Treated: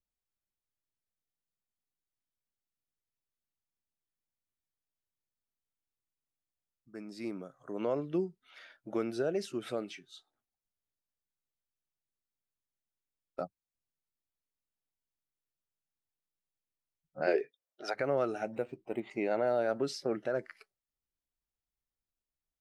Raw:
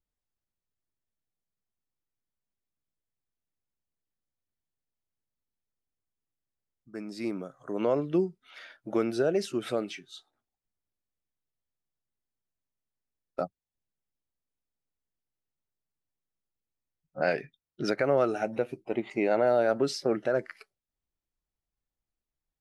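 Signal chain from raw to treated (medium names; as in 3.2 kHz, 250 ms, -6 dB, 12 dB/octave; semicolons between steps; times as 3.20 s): 17.26–17.94 s: resonant high-pass 340 Hz -> 810 Hz, resonance Q 6; 18.52–19.00 s: decimation joined by straight lines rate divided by 4×; trim -6 dB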